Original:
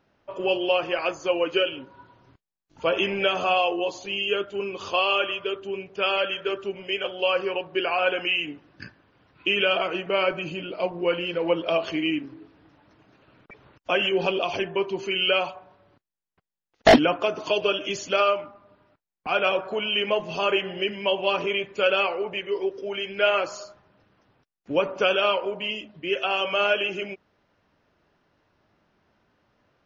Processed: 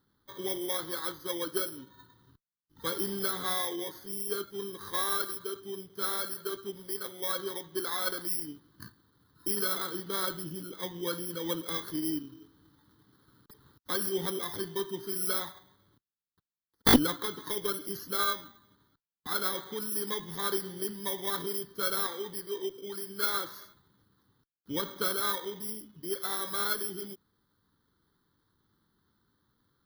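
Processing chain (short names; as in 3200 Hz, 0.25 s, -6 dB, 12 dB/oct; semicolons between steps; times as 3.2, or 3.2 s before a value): FFT order left unsorted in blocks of 16 samples; fixed phaser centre 2400 Hz, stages 6; added harmonics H 2 -12 dB, 3 -16 dB, 6 -35 dB, 8 -34 dB, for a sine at -4 dBFS; gain +2 dB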